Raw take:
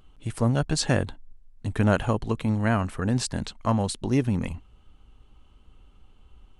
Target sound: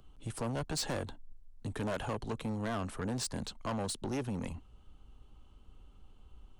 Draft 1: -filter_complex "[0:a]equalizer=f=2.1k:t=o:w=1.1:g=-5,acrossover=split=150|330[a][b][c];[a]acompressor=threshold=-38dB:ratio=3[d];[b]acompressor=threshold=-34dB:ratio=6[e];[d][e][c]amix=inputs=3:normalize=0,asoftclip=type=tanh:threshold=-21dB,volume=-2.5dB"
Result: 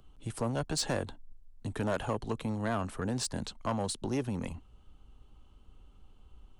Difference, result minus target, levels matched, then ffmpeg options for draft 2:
soft clip: distortion -6 dB
-filter_complex "[0:a]equalizer=f=2.1k:t=o:w=1.1:g=-5,acrossover=split=150|330[a][b][c];[a]acompressor=threshold=-38dB:ratio=3[d];[b]acompressor=threshold=-34dB:ratio=6[e];[d][e][c]amix=inputs=3:normalize=0,asoftclip=type=tanh:threshold=-28dB,volume=-2.5dB"

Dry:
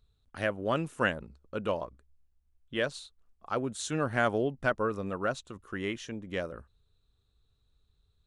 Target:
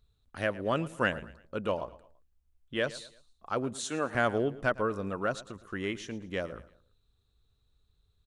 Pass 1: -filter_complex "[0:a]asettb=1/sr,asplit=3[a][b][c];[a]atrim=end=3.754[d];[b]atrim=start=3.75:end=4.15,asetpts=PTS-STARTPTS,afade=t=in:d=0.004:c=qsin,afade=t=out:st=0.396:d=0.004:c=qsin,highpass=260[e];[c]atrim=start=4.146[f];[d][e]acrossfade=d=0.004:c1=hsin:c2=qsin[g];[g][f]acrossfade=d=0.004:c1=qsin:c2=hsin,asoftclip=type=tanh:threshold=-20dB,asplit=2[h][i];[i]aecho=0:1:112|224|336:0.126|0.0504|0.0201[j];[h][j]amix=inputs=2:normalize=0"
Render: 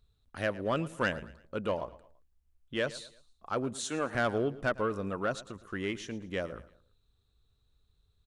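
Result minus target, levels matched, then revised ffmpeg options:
soft clip: distortion +18 dB
-filter_complex "[0:a]asettb=1/sr,asplit=3[a][b][c];[a]atrim=end=3.754[d];[b]atrim=start=3.75:end=4.15,asetpts=PTS-STARTPTS,afade=t=in:d=0.004:c=qsin,afade=t=out:st=0.396:d=0.004:c=qsin,highpass=260[e];[c]atrim=start=4.146[f];[d][e]acrossfade=d=0.004:c1=hsin:c2=qsin[g];[g][f]acrossfade=d=0.004:c1=qsin:c2=hsin,asoftclip=type=tanh:threshold=-9dB,asplit=2[h][i];[i]aecho=0:1:112|224|336:0.126|0.0504|0.0201[j];[h][j]amix=inputs=2:normalize=0"

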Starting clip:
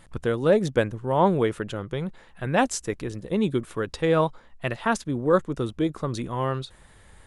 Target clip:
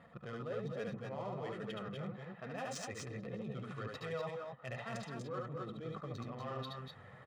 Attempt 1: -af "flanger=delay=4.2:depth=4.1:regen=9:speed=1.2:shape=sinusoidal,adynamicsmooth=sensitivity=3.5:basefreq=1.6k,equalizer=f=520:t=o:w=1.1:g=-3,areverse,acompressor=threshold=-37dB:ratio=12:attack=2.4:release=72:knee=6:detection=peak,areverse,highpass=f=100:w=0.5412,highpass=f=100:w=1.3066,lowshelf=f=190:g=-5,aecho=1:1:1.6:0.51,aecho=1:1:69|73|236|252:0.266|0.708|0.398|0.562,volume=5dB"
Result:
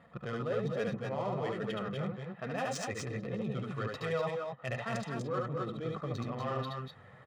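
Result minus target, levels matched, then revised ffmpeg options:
compressor: peak gain reduction -7.5 dB
-af "flanger=delay=4.2:depth=4.1:regen=9:speed=1.2:shape=sinusoidal,adynamicsmooth=sensitivity=3.5:basefreq=1.6k,equalizer=f=520:t=o:w=1.1:g=-3,areverse,acompressor=threshold=-45dB:ratio=12:attack=2.4:release=72:knee=6:detection=peak,areverse,highpass=f=100:w=0.5412,highpass=f=100:w=1.3066,lowshelf=f=190:g=-5,aecho=1:1:1.6:0.51,aecho=1:1:69|73|236|252:0.266|0.708|0.398|0.562,volume=5dB"

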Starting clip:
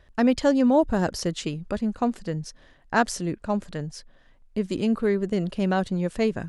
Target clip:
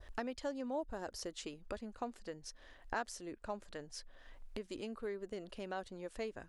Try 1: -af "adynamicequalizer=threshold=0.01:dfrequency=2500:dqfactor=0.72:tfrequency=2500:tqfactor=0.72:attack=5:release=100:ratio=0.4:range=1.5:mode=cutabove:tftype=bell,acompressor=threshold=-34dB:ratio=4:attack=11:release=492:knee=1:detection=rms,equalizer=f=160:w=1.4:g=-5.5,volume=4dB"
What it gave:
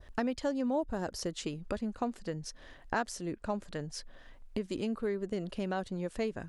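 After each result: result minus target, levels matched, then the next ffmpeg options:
125 Hz band +6.5 dB; compressor: peak gain reduction -5.5 dB
-af "adynamicequalizer=threshold=0.01:dfrequency=2500:dqfactor=0.72:tfrequency=2500:tqfactor=0.72:attack=5:release=100:ratio=0.4:range=1.5:mode=cutabove:tftype=bell,acompressor=threshold=-34dB:ratio=4:attack=11:release=492:knee=1:detection=rms,equalizer=f=160:w=1.4:g=-17.5,volume=4dB"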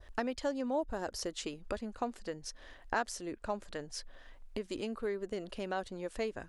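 compressor: peak gain reduction -5.5 dB
-af "adynamicequalizer=threshold=0.01:dfrequency=2500:dqfactor=0.72:tfrequency=2500:tqfactor=0.72:attack=5:release=100:ratio=0.4:range=1.5:mode=cutabove:tftype=bell,acompressor=threshold=-41.5dB:ratio=4:attack=11:release=492:knee=1:detection=rms,equalizer=f=160:w=1.4:g=-17.5,volume=4dB"

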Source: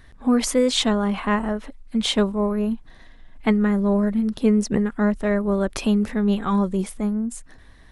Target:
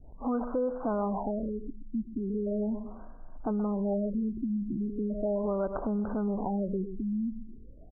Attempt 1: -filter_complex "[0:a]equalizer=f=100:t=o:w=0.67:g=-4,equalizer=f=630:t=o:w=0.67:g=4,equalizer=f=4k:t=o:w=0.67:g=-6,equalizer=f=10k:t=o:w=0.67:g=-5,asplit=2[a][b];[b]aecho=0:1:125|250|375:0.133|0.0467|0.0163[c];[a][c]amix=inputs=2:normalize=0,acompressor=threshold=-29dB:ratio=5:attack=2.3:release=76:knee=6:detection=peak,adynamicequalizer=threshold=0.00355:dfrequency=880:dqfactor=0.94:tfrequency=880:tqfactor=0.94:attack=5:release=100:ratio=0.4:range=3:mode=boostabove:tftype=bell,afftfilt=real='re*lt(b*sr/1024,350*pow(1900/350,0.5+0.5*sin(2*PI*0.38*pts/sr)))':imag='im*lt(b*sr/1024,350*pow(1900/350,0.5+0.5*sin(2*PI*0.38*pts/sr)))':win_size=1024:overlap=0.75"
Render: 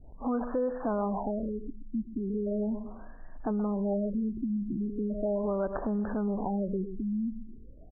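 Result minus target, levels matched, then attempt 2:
2000 Hz band +3.5 dB
-filter_complex "[0:a]equalizer=f=100:t=o:w=0.67:g=-4,equalizer=f=630:t=o:w=0.67:g=4,equalizer=f=4k:t=o:w=0.67:g=-6,equalizer=f=10k:t=o:w=0.67:g=-5,asplit=2[a][b];[b]aecho=0:1:125|250|375:0.133|0.0467|0.0163[c];[a][c]amix=inputs=2:normalize=0,acompressor=threshold=-29dB:ratio=5:attack=2.3:release=76:knee=6:detection=peak,adynamicequalizer=threshold=0.00355:dfrequency=880:dqfactor=0.94:tfrequency=880:tqfactor=0.94:attack=5:release=100:ratio=0.4:range=3:mode=boostabove:tftype=bell,asuperstop=centerf=2700:order=20:qfactor=0.85,afftfilt=real='re*lt(b*sr/1024,350*pow(1900/350,0.5+0.5*sin(2*PI*0.38*pts/sr)))':imag='im*lt(b*sr/1024,350*pow(1900/350,0.5+0.5*sin(2*PI*0.38*pts/sr)))':win_size=1024:overlap=0.75"

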